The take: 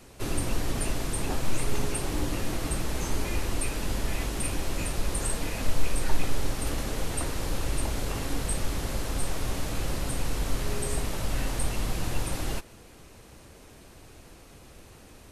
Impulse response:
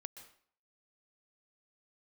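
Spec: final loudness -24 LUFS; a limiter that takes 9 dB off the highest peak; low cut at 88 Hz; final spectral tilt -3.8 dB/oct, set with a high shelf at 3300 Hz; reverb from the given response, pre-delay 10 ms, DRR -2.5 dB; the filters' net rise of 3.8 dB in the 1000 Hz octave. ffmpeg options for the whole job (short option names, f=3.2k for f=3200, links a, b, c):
-filter_complex "[0:a]highpass=88,equalizer=f=1k:t=o:g=4.5,highshelf=f=3.3k:g=3,alimiter=level_in=1.5dB:limit=-24dB:level=0:latency=1,volume=-1.5dB,asplit=2[a][b];[1:a]atrim=start_sample=2205,adelay=10[c];[b][c]afir=irnorm=-1:irlink=0,volume=7dB[d];[a][d]amix=inputs=2:normalize=0,volume=6dB"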